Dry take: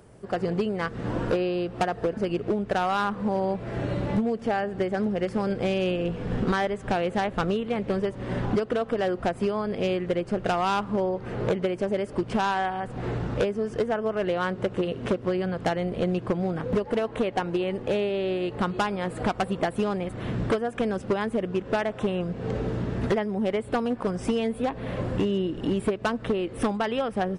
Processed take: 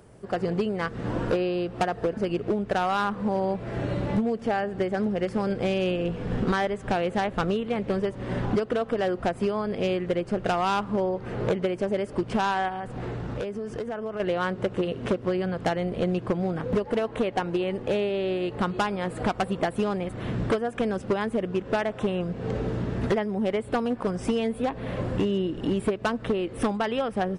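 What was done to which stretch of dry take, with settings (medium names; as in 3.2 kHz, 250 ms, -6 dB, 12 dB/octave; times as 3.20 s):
12.68–14.20 s: compression, threshold -28 dBFS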